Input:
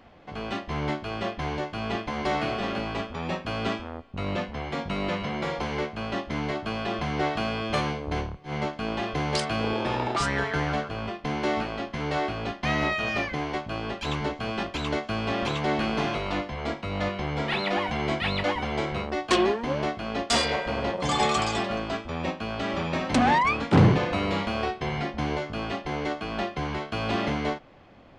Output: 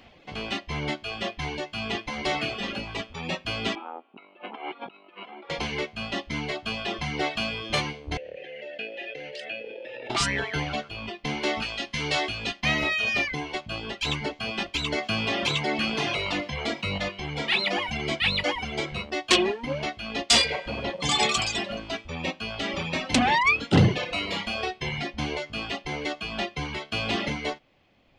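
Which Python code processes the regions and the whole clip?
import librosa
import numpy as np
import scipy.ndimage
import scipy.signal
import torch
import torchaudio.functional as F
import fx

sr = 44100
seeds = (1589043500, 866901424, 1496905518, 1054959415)

y = fx.chain(x, sr, fx.over_compress(threshold_db=-35.0, ratio=-0.5),
    fx.cabinet(low_hz=280.0, low_slope=24, high_hz=2700.0, hz=(350.0, 520.0, 830.0, 1300.0, 1900.0), db=(3, -4, 7, 5, -10)), at=(3.75, 5.5))
y = fx.chain(y, sr, fx.vowel_filter(vowel='e'),
    fx.env_flatten(amount_pct=100), at=(8.17, 10.1))
y = fx.chain(y, sr, fx.high_shelf(hz=2700.0, db=8.0),
    fx.resample_bad(factor=2, down='none', up='filtered'), at=(11.62, 12.61))
y = fx.chain(y, sr, fx.highpass(hz=77.0, slope=12),
    fx.env_flatten(amount_pct=50), at=(14.98, 16.98))
y = fx.dereverb_blind(y, sr, rt60_s=1.8)
y = fx.high_shelf_res(y, sr, hz=1900.0, db=6.5, q=1.5)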